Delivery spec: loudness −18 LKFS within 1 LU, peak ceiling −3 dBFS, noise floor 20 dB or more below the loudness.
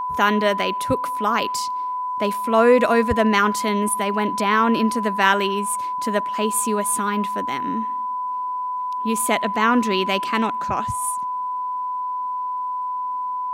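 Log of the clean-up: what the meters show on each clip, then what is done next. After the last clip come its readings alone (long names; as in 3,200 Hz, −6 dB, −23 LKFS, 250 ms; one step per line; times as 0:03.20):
interfering tone 1,000 Hz; level of the tone −23 dBFS; integrated loudness −21.0 LKFS; sample peak −2.0 dBFS; target loudness −18.0 LKFS
→ notch filter 1,000 Hz, Q 30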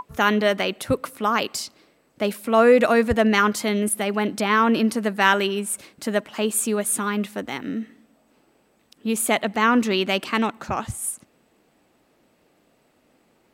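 interfering tone none found; integrated loudness −22.0 LKFS; sample peak −2.5 dBFS; target loudness −18.0 LKFS
→ level +4 dB
brickwall limiter −3 dBFS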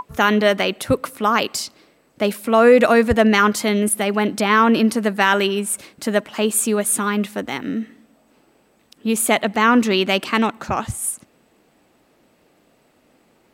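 integrated loudness −18.0 LKFS; sample peak −3.0 dBFS; background noise floor −59 dBFS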